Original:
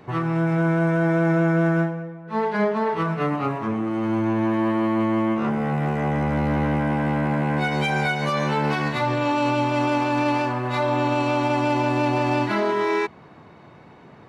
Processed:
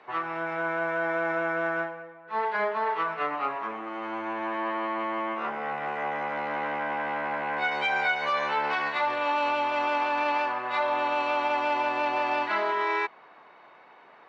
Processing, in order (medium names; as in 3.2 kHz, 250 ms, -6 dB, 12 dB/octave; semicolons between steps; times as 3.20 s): band-pass 730–3300 Hz